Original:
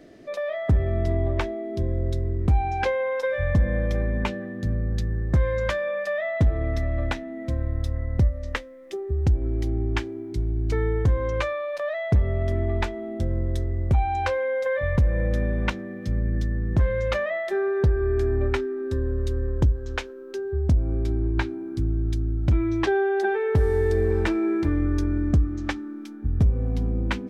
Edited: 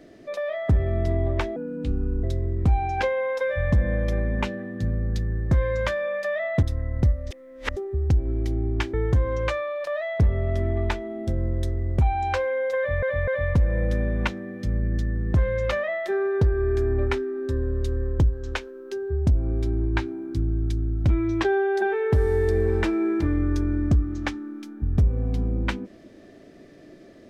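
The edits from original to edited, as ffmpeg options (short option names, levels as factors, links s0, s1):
-filter_complex "[0:a]asplit=9[s0][s1][s2][s3][s4][s5][s6][s7][s8];[s0]atrim=end=1.564[s9];[s1]atrim=start=1.56:end=2.06,asetpts=PTS-STARTPTS,asetrate=32634,aresample=44100,atrim=end_sample=29797,asetpts=PTS-STARTPTS[s10];[s2]atrim=start=2.056:end=6.452[s11];[s3]atrim=start=7.788:end=8.472[s12];[s4]atrim=start=8.468:end=8.932,asetpts=PTS-STARTPTS,areverse[s13];[s5]atrim=start=8.928:end=10.102[s14];[s6]atrim=start=10.858:end=14.952[s15];[s7]atrim=start=14.698:end=14.952[s16];[s8]atrim=start=14.698[s17];[s9][s10]acrossfade=d=0.004:c1=hsin:c2=hsin[s18];[s18][s11]acrossfade=d=0.004:c1=hsin:c2=hsin[s19];[s19][s12]acrossfade=d=0.004:c1=hsin:c2=hsin[s20];[s20][s13]acrossfade=d=0.004:c1=hsin:c2=hsin[s21];[s21][s14]acrossfade=d=0.004:c1=hsin:c2=hsin[s22];[s22][s15]acrossfade=d=0.004:c1=hsin:c2=hsin[s23];[s23][s16]acrossfade=d=0.004:c1=hsin:c2=hsin[s24];[s24][s17]acrossfade=d=0.004:c1=hsin:c2=hsin"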